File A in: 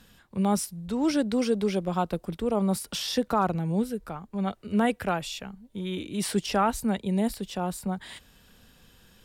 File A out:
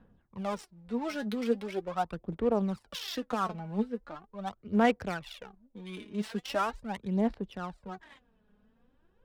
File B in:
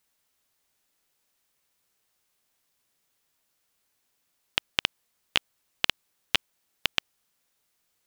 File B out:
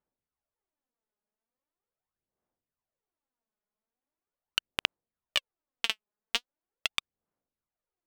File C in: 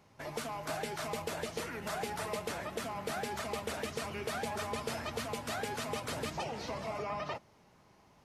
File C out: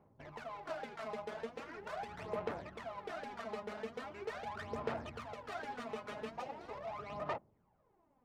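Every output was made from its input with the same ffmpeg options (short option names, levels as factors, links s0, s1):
-af "acrusher=bits=8:mode=log:mix=0:aa=0.000001,adynamicsmooth=sensitivity=6:basefreq=830,aphaser=in_gain=1:out_gain=1:delay=4.8:decay=0.65:speed=0.41:type=sinusoidal,lowshelf=f=340:g=-7.5,volume=0.531"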